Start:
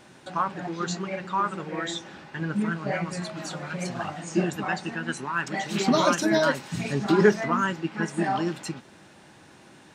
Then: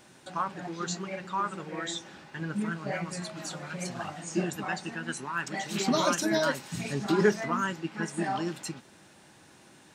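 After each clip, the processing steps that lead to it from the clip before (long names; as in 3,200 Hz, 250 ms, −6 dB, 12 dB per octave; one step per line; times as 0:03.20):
high-shelf EQ 6,000 Hz +9 dB
level −5 dB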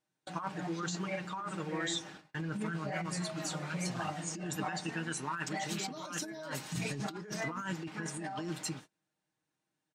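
noise gate −47 dBFS, range −31 dB
comb filter 6.5 ms, depth 52%
compressor whose output falls as the input rises −33 dBFS, ratio −1
level −4.5 dB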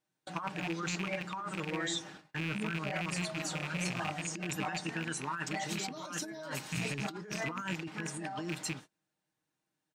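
loose part that buzzes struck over −40 dBFS, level −27 dBFS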